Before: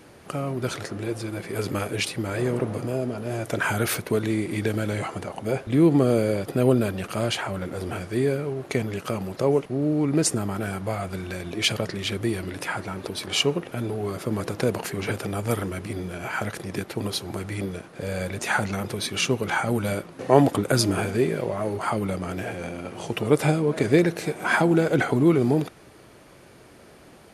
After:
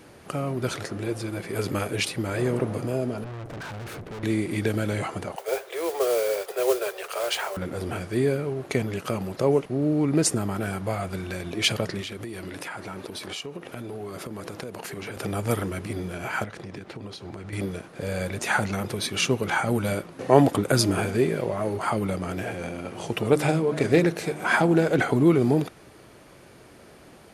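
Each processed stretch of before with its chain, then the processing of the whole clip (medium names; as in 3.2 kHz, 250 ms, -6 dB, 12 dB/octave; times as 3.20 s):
3.24–4.23 s: high-pass 120 Hz + tilt EQ -4 dB/octave + valve stage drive 35 dB, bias 0.75
5.36–7.57 s: steep high-pass 380 Hz 96 dB/octave + modulation noise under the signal 14 dB
12.01–15.17 s: bass shelf 120 Hz -8 dB + compression 10:1, threshold -31 dBFS
16.44–17.53 s: compression 10:1, threshold -33 dBFS + distance through air 77 m
23.31–24.99 s: hum notches 50/100/150/200/250/300/350 Hz + loudspeaker Doppler distortion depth 0.11 ms
whole clip: none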